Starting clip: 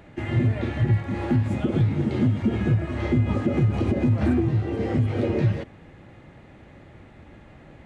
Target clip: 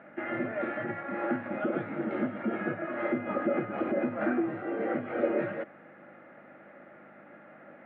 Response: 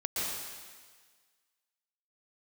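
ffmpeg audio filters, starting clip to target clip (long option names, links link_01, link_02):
-af "aeval=exprs='val(0)+0.0112*(sin(2*PI*50*n/s)+sin(2*PI*2*50*n/s)/2+sin(2*PI*3*50*n/s)/3+sin(2*PI*4*50*n/s)/4+sin(2*PI*5*50*n/s)/5)':channel_layout=same,highpass=frequency=260:width=0.5412,highpass=frequency=260:width=1.3066,equalizer=frequency=260:width_type=q:width=4:gain=-6,equalizer=frequency=410:width_type=q:width=4:gain=-8,equalizer=frequency=590:width_type=q:width=4:gain=5,equalizer=frequency=970:width_type=q:width=4:gain=-6,equalizer=frequency=1400:width_type=q:width=4:gain=8,lowpass=frequency=2100:width=0.5412,lowpass=frequency=2100:width=1.3066"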